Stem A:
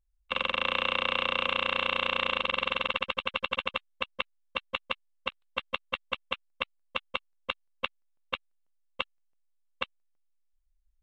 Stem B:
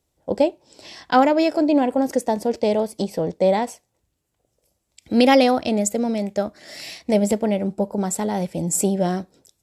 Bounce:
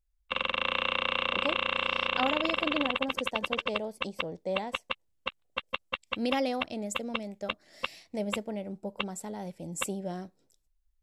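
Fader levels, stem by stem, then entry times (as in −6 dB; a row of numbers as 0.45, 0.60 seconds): −1.0, −15.0 decibels; 0.00, 1.05 seconds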